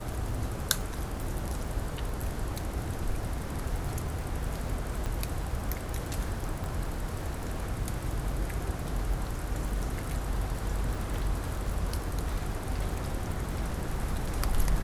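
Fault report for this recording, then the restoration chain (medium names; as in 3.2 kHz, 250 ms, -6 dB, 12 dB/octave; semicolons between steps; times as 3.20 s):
crackle 46 per s -36 dBFS
5.06 s: pop
6.64 s: pop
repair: de-click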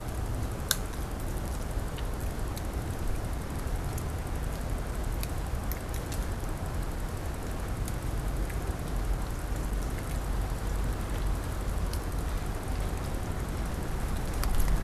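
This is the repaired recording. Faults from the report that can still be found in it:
5.06 s: pop
6.64 s: pop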